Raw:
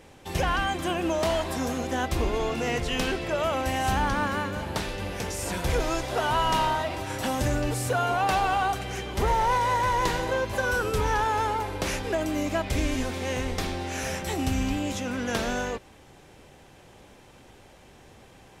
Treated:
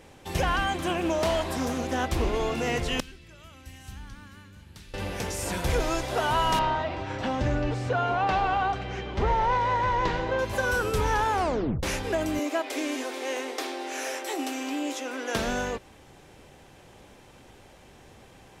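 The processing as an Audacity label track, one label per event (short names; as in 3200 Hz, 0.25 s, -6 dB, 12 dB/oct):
0.710000	2.380000	Doppler distortion depth 0.27 ms
3.000000	4.940000	passive tone stack bass-middle-treble 6-0-2
6.590000	10.390000	air absorption 170 m
11.330000	11.330000	tape stop 0.50 s
12.390000	15.350000	elliptic high-pass 280 Hz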